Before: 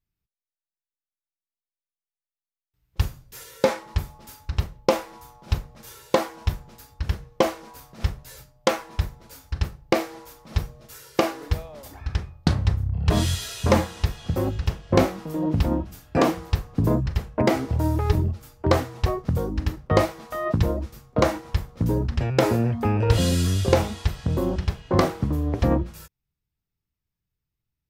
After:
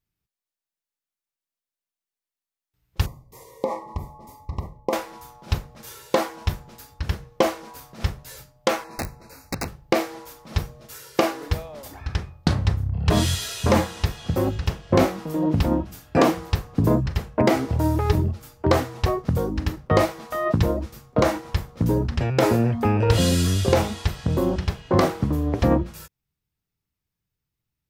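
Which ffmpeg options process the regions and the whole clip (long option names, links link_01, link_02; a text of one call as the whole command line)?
ffmpeg -i in.wav -filter_complex "[0:a]asettb=1/sr,asplit=3[link_01][link_02][link_03];[link_01]atrim=end=3.064[link_04];[link_02]atrim=start=3.06:end=4.93,asetpts=PTS-STARTPTS,afade=type=in:duration=0.004:curve=qsin,afade=type=out:start_time=1.866:duration=0.004:curve=qsin,highshelf=frequency=2000:width_type=q:width=3:gain=-10.5,acompressor=threshold=-22dB:ratio=5:attack=3.2:release=140:knee=1:detection=peak,asuperstop=centerf=1500:order=12:qfactor=2[link_05];[link_03]atrim=start=4.926[link_06];[link_04][link_05]acrossfade=duration=0.004:curve1=hsin:curve2=qsin[link_07];[link_07][link_06]acrossfade=duration=0.004:curve1=qsin:curve2=hsin,asettb=1/sr,asplit=3[link_08][link_09][link_10];[link_08]atrim=end=8.844[link_11];[link_09]atrim=start=8.84:end=9.68,asetpts=PTS-STARTPTS,afade=type=in:duration=0.004:curve=qsin,afade=type=out:start_time=0.836:duration=0.004:curve=qsin,acrossover=split=3800[link_12][link_13];[link_13]acompressor=threshold=-49dB:ratio=4:attack=1:release=60[link_14];[link_12][link_14]amix=inputs=2:normalize=0,aeval=exprs='(mod(13.3*val(0)+1,2)-1)/13.3':channel_layout=same,asuperstop=centerf=3200:order=20:qfactor=3[link_15];[link_10]atrim=start=9.676[link_16];[link_11][link_15]acrossfade=duration=0.004:curve1=hsin:curve2=qsin[link_17];[link_17][link_16]acrossfade=duration=0.004:curve1=qsin:curve2=hsin,lowshelf=frequency=63:gain=-8,alimiter=level_in=7.5dB:limit=-1dB:release=50:level=0:latency=1,volume=-4.5dB" out.wav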